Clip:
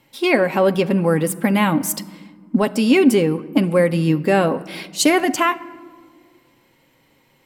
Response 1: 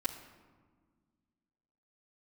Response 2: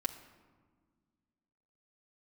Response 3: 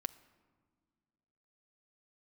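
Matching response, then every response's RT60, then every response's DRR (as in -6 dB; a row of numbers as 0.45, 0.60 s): 3; not exponential, not exponential, not exponential; -8.5, -1.0, 7.0 dB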